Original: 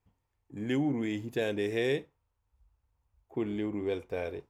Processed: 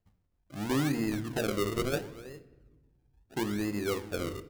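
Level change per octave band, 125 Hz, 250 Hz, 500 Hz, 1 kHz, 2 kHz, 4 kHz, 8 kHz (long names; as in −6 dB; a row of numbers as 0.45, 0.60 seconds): +3.5, +0.5, −1.5, +7.0, +0.5, +3.0, +13.5 decibels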